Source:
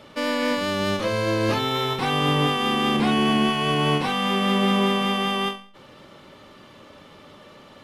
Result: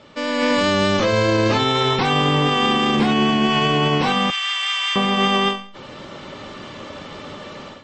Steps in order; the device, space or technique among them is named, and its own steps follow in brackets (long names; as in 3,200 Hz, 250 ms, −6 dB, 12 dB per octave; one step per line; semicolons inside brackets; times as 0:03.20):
0:04.30–0:04.96: Bessel high-pass filter 2,100 Hz, order 4
low-bitrate web radio (automatic gain control gain up to 12.5 dB; brickwall limiter −8.5 dBFS, peak gain reduction 7 dB; MP3 32 kbit/s 22,050 Hz)